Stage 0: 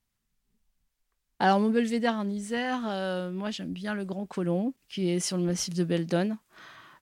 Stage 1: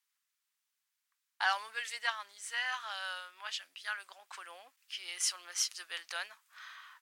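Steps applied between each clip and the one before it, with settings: HPF 1100 Hz 24 dB/oct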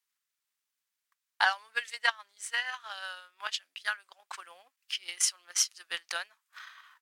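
transient shaper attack +11 dB, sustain -8 dB; gain -1.5 dB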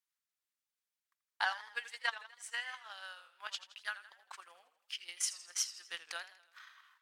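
warbling echo 81 ms, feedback 53%, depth 134 cents, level -14 dB; gain -8 dB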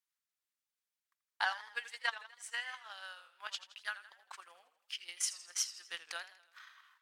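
nothing audible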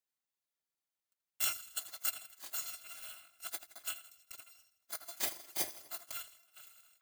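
FFT order left unsorted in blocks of 256 samples

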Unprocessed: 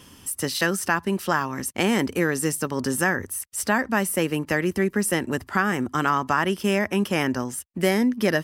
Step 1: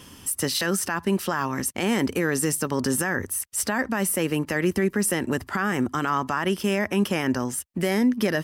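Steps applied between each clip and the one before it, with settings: limiter -16 dBFS, peak gain reduction 9 dB; gain +2.5 dB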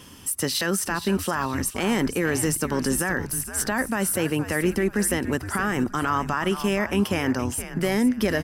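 frequency-shifting echo 0.468 s, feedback 33%, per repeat -110 Hz, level -11 dB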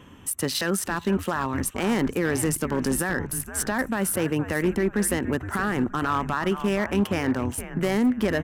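Wiener smoothing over 9 samples; overloaded stage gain 16 dB

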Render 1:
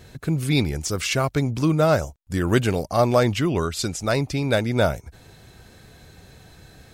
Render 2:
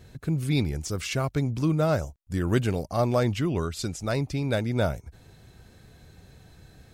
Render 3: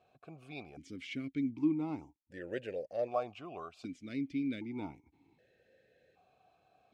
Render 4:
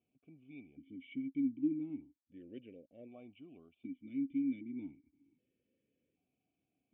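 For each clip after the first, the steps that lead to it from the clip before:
low shelf 310 Hz +5.5 dB; gain -7.5 dB
vowel sequencer 1.3 Hz
vocal tract filter i; gain +1 dB

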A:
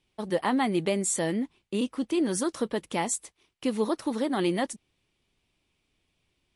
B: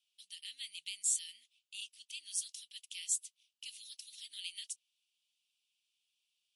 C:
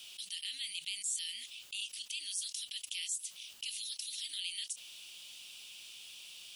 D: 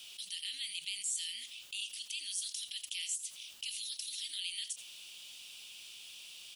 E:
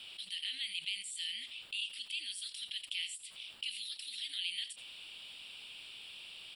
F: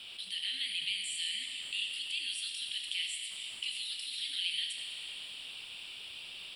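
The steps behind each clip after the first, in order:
elliptic high-pass 2800 Hz, stop band 60 dB; gain -3 dB
fast leveller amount 70%; gain -5 dB
echo 85 ms -13.5 dB
running mean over 7 samples; gain +6 dB
plate-style reverb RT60 3.9 s, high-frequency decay 0.95×, DRR 2 dB; gain +2 dB

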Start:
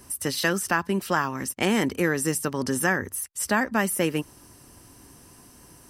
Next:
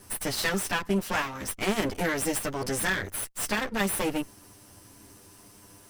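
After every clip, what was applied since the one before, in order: minimum comb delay 10 ms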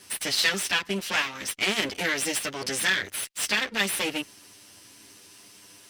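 weighting filter D; gain -2.5 dB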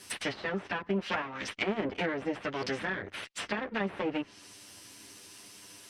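treble ducked by the level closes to 950 Hz, closed at -23.5 dBFS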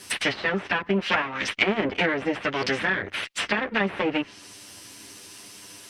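dynamic EQ 2400 Hz, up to +5 dB, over -49 dBFS, Q 0.78; gain +6.5 dB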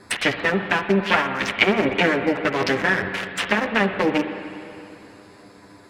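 Wiener smoothing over 15 samples; reverb RT60 2.8 s, pre-delay 52 ms, DRR 8 dB; gain +5 dB

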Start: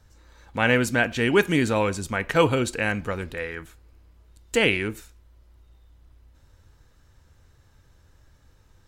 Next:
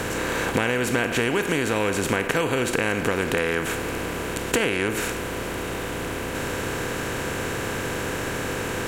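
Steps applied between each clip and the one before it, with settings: per-bin compression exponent 0.4; high shelf 9900 Hz +7.5 dB; compressor 16:1, threshold -22 dBFS, peak gain reduction 13 dB; gain +3.5 dB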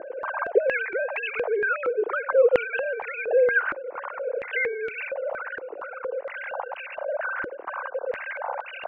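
sine-wave speech; air absorption 270 m; stepped band-pass 4.3 Hz 340–2700 Hz; gain +9 dB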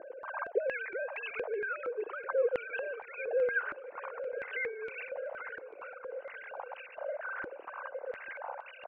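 feedback echo 0.842 s, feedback 51%, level -16 dB; noise-modulated level, depth 65%; gain -7.5 dB

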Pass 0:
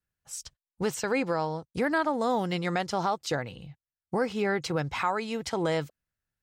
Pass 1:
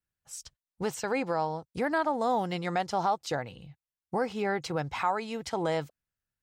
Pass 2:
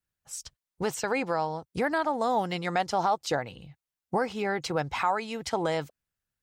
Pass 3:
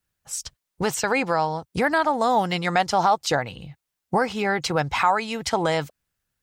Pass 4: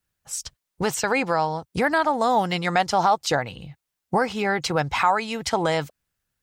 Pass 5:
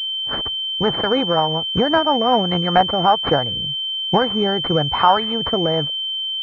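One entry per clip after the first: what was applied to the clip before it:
dynamic EQ 780 Hz, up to +6 dB, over -41 dBFS, Q 2; gain -3.5 dB
harmonic-percussive split percussive +4 dB
dynamic EQ 390 Hz, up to -4 dB, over -42 dBFS, Q 0.79; gain +8 dB
nothing audible
rotary speaker horn 5.5 Hz, later 1 Hz, at 2.3; pulse-width modulation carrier 3100 Hz; gain +7.5 dB

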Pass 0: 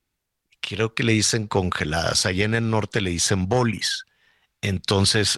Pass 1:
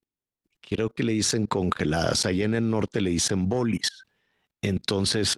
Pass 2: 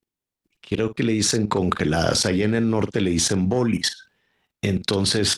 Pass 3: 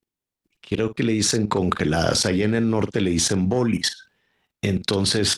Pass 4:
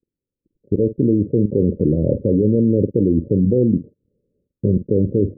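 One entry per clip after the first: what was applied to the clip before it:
bell 290 Hz +11 dB 2.2 oct; level quantiser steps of 24 dB
doubler 48 ms -13.5 dB; gain +3.5 dB
nothing audible
Chebyshev low-pass 570 Hz, order 8; gain +6 dB

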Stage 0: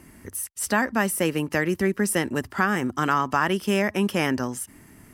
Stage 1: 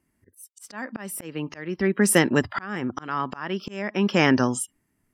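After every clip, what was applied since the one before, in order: spectral noise reduction 29 dB; auto swell 0.62 s; gain +6 dB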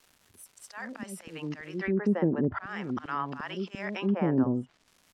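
bands offset in time highs, lows 70 ms, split 540 Hz; crackle 520/s -44 dBFS; treble ducked by the level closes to 710 Hz, closed at -18 dBFS; gain -4 dB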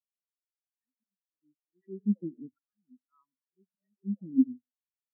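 reverb RT60 0.60 s, pre-delay 58 ms, DRR 12 dB; spectral expander 4:1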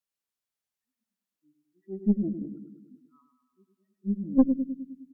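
on a send: feedback echo 0.103 s, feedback 60%, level -7 dB; on the sum: tube stage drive 17 dB, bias 0.6; gain +7 dB

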